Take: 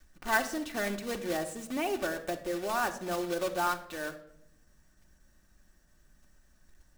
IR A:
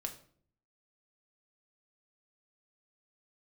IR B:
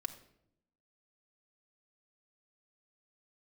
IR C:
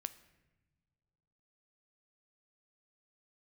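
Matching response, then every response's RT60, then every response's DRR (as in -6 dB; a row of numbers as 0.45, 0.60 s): B; 0.55 s, 0.75 s, not exponential; 3.5, 4.0, 12.5 dB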